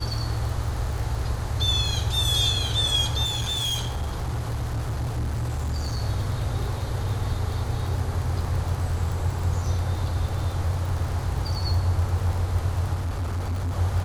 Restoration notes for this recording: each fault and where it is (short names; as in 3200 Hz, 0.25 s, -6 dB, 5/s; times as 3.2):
crackle 34/s -29 dBFS
3.24–6 clipped -23.5 dBFS
12.94–13.74 clipped -24 dBFS